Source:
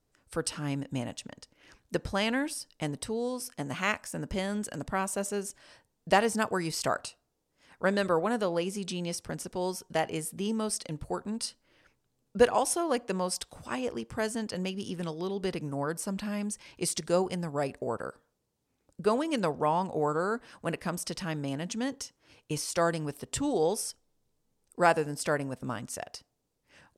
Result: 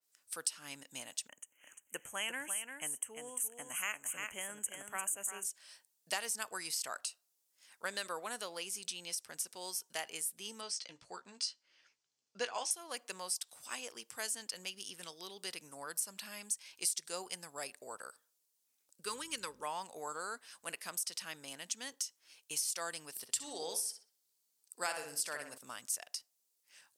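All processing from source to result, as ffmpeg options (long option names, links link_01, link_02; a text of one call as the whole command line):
ffmpeg -i in.wav -filter_complex "[0:a]asettb=1/sr,asplit=3[link_01][link_02][link_03];[link_01]atrim=end=1.284[link_04];[link_02]atrim=start=1.28:end=5.44,asetpts=PTS-STARTPTS,afade=type=in:duration=0.004:curve=qsin,afade=type=out:start_time=4.156:duration=0.004:curve=qsin,asuperstop=centerf=4500:order=12:qfactor=1.4,aecho=1:1:347:0.473,atrim=end_sample=183456[link_05];[link_03]atrim=start=5.436[link_06];[link_04][link_05]acrossfade=duration=0.004:curve1=hsin:curve2=qsin[link_07];[link_07][link_06]acrossfade=duration=0.004:curve1=qsin:curve2=hsin,asettb=1/sr,asplit=3[link_08][link_09][link_10];[link_08]atrim=end=10.614[link_11];[link_09]atrim=start=10.61:end=12.71,asetpts=PTS-STARTPTS,afade=type=in:duration=0.004:curve=qsin,afade=type=out:start_time=2.096:duration=0.004:curve=qsin,lowpass=frequency=6300:width=0.5412,lowpass=frequency=6300:width=1.3066,bandreject=frequency=3800:width=17,asplit=2[link_12][link_13];[link_13]adelay=16,volume=-9dB[link_14];[link_12][link_14]amix=inputs=2:normalize=0,atrim=end_sample=92610[link_15];[link_10]atrim=start=12.706[link_16];[link_11][link_15]acrossfade=duration=0.004:curve1=hsin:curve2=qsin[link_17];[link_17][link_16]acrossfade=duration=0.004:curve1=qsin:curve2=hsin,asettb=1/sr,asplit=3[link_18][link_19][link_20];[link_18]atrim=end=19.044[link_21];[link_19]atrim=start=19.04:end=19.63,asetpts=PTS-STARTPTS,afade=type=in:duration=0.004:curve=qsin,afade=type=out:start_time=0.586:duration=0.004:curve=qsin,aeval=exprs='val(0)+0.0112*(sin(2*PI*50*n/s)+sin(2*PI*2*50*n/s)/2+sin(2*PI*3*50*n/s)/3+sin(2*PI*4*50*n/s)/4+sin(2*PI*5*50*n/s)/5)':channel_layout=same,asuperstop=centerf=700:order=4:qfactor=2.1[link_22];[link_20]atrim=start=19.626[link_23];[link_21][link_22]acrossfade=duration=0.004:curve1=hsin:curve2=qsin[link_24];[link_24][link_23]acrossfade=duration=0.004:curve1=qsin:curve2=hsin,asettb=1/sr,asplit=3[link_25][link_26][link_27];[link_25]atrim=end=23.104[link_28];[link_26]atrim=start=23.1:end=25.58,asetpts=PTS-STARTPTS,afade=type=in:duration=0.004:curve=qsin,afade=type=out:start_time=2.476:duration=0.004:curve=qsin,equalizer=frequency=4500:width=7.5:gain=5,asplit=2[link_29][link_30];[link_30]adelay=62,lowpass=frequency=2800:poles=1,volume=-6dB,asplit=2[link_31][link_32];[link_32]adelay=62,lowpass=frequency=2800:poles=1,volume=0.42,asplit=2[link_33][link_34];[link_34]adelay=62,lowpass=frequency=2800:poles=1,volume=0.42,asplit=2[link_35][link_36];[link_36]adelay=62,lowpass=frequency=2800:poles=1,volume=0.42,asplit=2[link_37][link_38];[link_38]adelay=62,lowpass=frequency=2800:poles=1,volume=0.42[link_39];[link_29][link_31][link_33][link_35][link_37][link_39]amix=inputs=6:normalize=0,atrim=end_sample=109368[link_40];[link_27]atrim=start=25.576[link_41];[link_28][link_40]acrossfade=duration=0.004:curve1=hsin:curve2=qsin[link_42];[link_42][link_41]acrossfade=duration=0.004:curve1=qsin:curve2=hsin,aderivative,acompressor=threshold=-39dB:ratio=3,adynamicequalizer=threshold=0.00178:dfrequency=3800:dqfactor=0.7:tfrequency=3800:tqfactor=0.7:attack=5:release=100:ratio=0.375:range=2:mode=cutabove:tftype=highshelf,volume=6dB" out.wav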